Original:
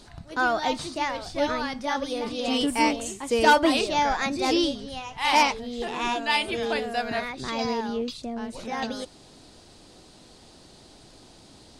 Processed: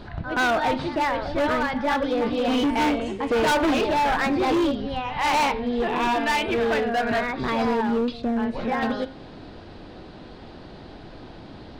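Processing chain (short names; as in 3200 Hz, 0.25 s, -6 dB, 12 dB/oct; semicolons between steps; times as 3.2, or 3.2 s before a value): bell 1600 Hz +3.5 dB 0.34 oct; in parallel at -1 dB: compressor, threshold -36 dBFS, peak gain reduction 21.5 dB; on the sum: air absorption 370 m; de-hum 132.7 Hz, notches 33; pre-echo 0.125 s -17 dB; on a send at -20.5 dB: reverb RT60 0.65 s, pre-delay 21 ms; on the sum: overloaded stage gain 24.5 dB; gain +6 dB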